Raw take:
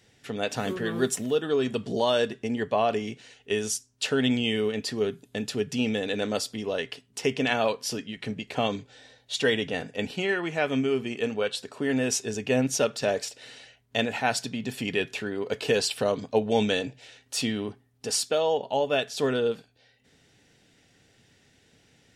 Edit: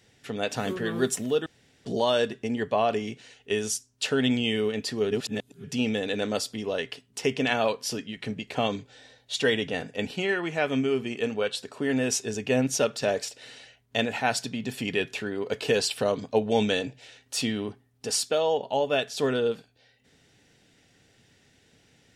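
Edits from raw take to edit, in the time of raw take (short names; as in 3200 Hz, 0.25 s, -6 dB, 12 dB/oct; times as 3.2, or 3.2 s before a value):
1.46–1.85 room tone
5.11–5.64 reverse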